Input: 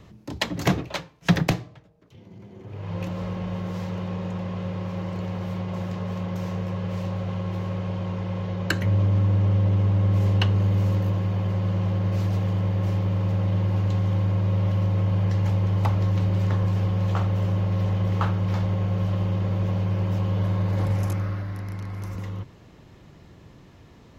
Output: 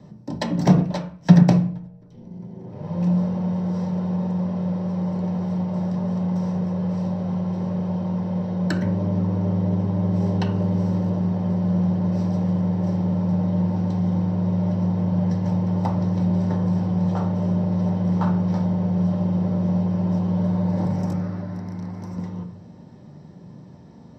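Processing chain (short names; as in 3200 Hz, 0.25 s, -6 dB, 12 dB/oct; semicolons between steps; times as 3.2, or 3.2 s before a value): bell 610 Hz +4.5 dB 0.21 oct; reverb RT60 0.45 s, pre-delay 3 ms, DRR 3 dB; gain -10 dB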